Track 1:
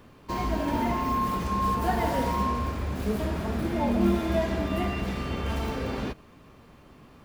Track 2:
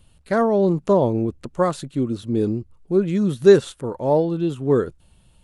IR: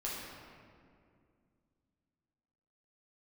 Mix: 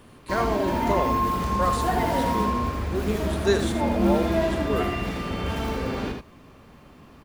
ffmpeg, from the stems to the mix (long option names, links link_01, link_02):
-filter_complex "[0:a]volume=1.5dB,asplit=2[link_01][link_02];[link_02]volume=-4.5dB[link_03];[1:a]highpass=frequency=1400:poles=1,volume=0.5dB,asplit=2[link_04][link_05];[link_05]volume=-9.5dB[link_06];[link_03][link_06]amix=inputs=2:normalize=0,aecho=0:1:79:1[link_07];[link_01][link_04][link_07]amix=inputs=3:normalize=0"